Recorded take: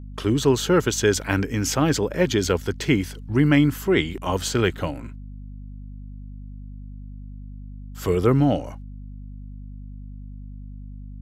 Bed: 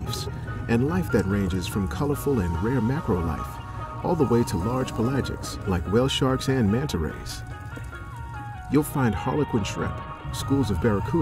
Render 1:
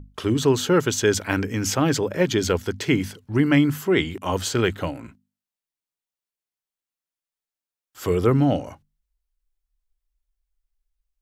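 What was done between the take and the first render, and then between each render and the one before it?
mains-hum notches 50/100/150/200/250 Hz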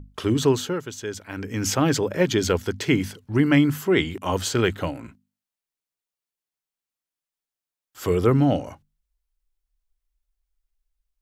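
0:00.47–0:01.65: duck −12 dB, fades 0.32 s linear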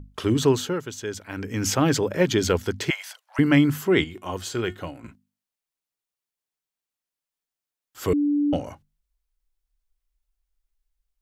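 0:02.90–0:03.39: Butterworth high-pass 600 Hz 72 dB per octave
0:04.04–0:05.04: tuned comb filter 360 Hz, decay 0.18 s
0:08.13–0:08.53: beep over 291 Hz −18.5 dBFS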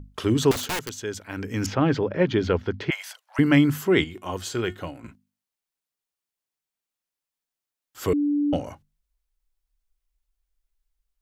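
0:00.51–0:00.97: wrap-around overflow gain 23 dB
0:01.66–0:02.92: high-frequency loss of the air 270 metres
0:08.10–0:08.53: bass and treble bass −3 dB, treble −2 dB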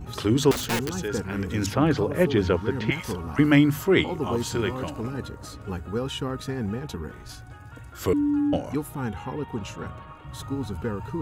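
mix in bed −7.5 dB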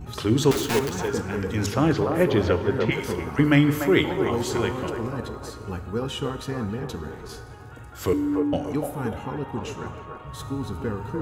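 delay with a band-pass on its return 294 ms, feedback 36%, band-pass 750 Hz, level −3 dB
reverb whose tail is shaped and stops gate 380 ms falling, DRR 10.5 dB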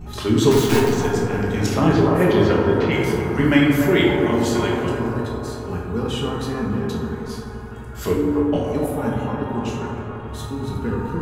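on a send: bucket-brigade delay 85 ms, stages 1,024, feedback 85%, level −9 dB
on the sum: rectangular room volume 240 cubic metres, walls mixed, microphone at 1.3 metres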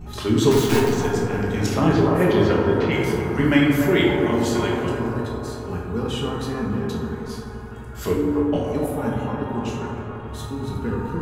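level −1.5 dB

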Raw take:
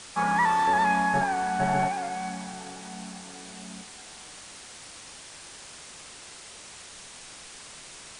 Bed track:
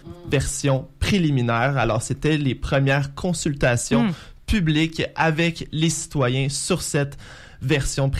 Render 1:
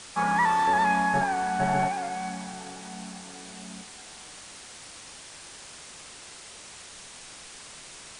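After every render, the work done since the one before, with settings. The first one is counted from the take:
no processing that can be heard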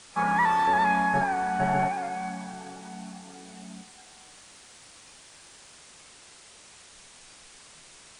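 noise reduction from a noise print 6 dB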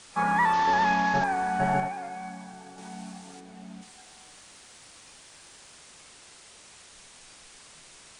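0:00.53–0:01.24: variable-slope delta modulation 32 kbit/s
0:01.80–0:02.78: clip gain −5 dB
0:03.39–0:03.81: high-shelf EQ 2,500 Hz → 4,300 Hz −11.5 dB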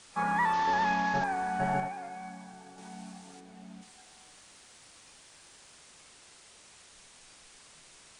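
level −4.5 dB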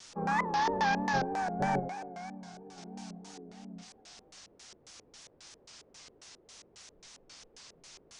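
auto-filter low-pass square 3.7 Hz 440–5,800 Hz
pitch vibrato 3.1 Hz 86 cents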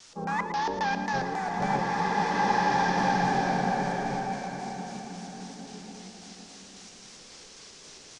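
single-tap delay 113 ms −10 dB
slow-attack reverb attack 2,230 ms, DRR −5 dB

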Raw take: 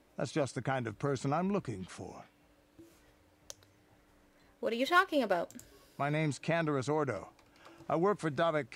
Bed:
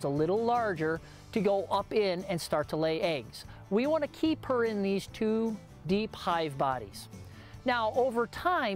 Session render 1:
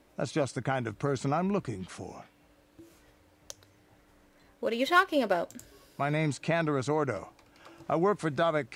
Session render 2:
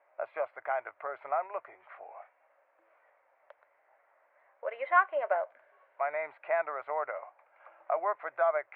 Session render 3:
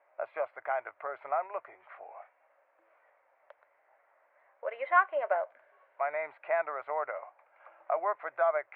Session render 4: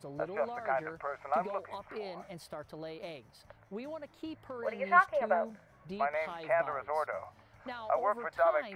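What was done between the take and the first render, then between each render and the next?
level +3.5 dB
elliptic band-pass filter 610–2,200 Hz, stop band 50 dB; spectral tilt −2 dB per octave
no processing that can be heard
mix in bed −14 dB

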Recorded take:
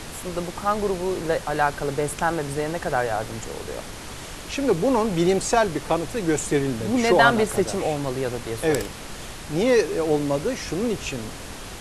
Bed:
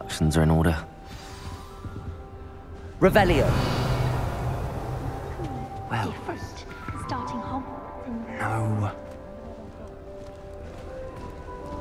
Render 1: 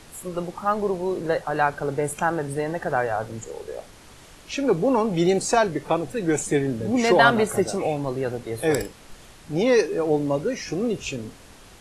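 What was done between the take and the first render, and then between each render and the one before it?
noise reduction from a noise print 11 dB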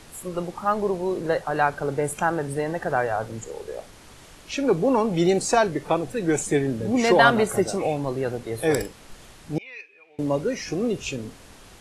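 0:09.58–0:10.19: resonant band-pass 2,400 Hz, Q 12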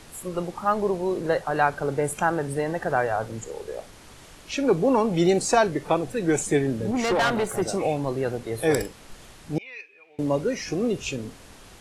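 0:06.91–0:07.62: tube saturation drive 18 dB, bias 0.55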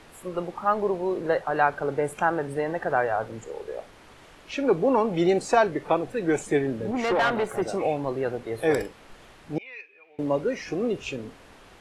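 bass and treble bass −6 dB, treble −11 dB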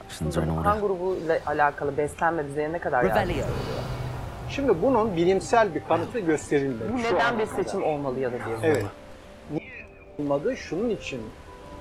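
mix in bed −7 dB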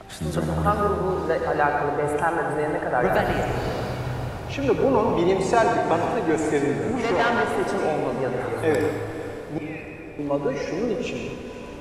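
on a send: feedback delay with all-pass diffusion 503 ms, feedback 47%, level −12.5 dB
on the sum: dense smooth reverb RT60 1.5 s, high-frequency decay 0.75×, pre-delay 75 ms, DRR 2.5 dB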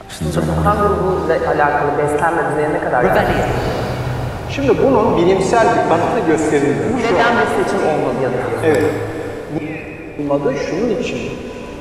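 level +8 dB
brickwall limiter −2 dBFS, peak gain reduction 3 dB

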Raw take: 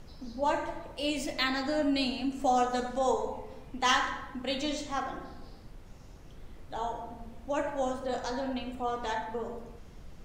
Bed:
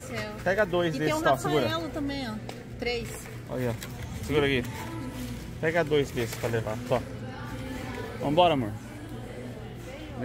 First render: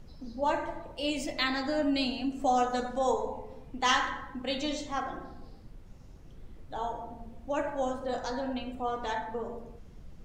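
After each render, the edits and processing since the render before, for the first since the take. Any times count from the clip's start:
broadband denoise 6 dB, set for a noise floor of −50 dBFS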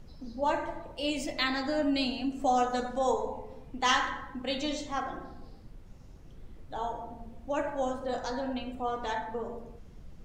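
no processing that can be heard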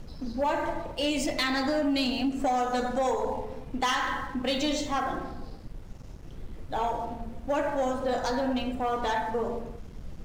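downward compressor, threshold −29 dBFS, peak gain reduction 8.5 dB
leveller curve on the samples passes 2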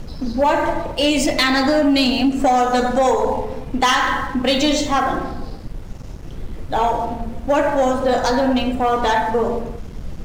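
level +11 dB

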